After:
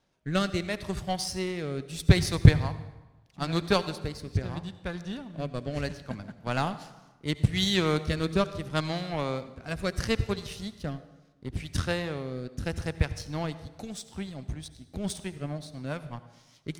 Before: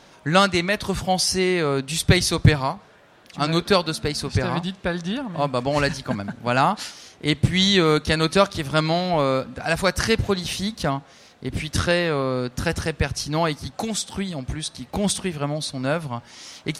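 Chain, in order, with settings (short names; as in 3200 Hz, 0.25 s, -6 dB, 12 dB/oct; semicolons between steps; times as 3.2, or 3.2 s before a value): power-law curve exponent 1.4; rotary speaker horn 0.75 Hz, later 5 Hz, at 14.81; low shelf 160 Hz +9.5 dB; reverb RT60 1.1 s, pre-delay 63 ms, DRR 13.5 dB; gain -4 dB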